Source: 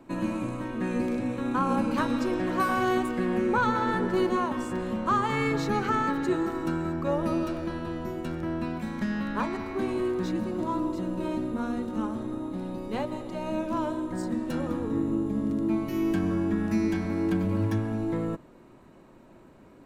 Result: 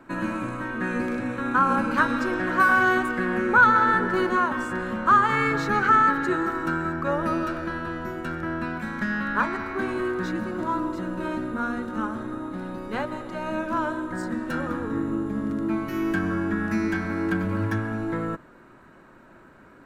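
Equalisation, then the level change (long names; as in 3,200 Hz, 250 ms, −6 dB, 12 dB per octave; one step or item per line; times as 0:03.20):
parametric band 1,500 Hz +14 dB 0.77 octaves
0.0 dB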